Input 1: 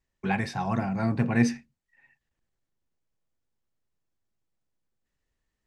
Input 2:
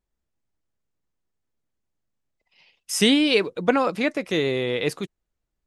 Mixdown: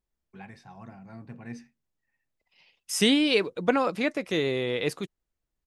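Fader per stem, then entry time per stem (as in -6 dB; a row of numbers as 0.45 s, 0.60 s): -18.0 dB, -3.5 dB; 0.10 s, 0.00 s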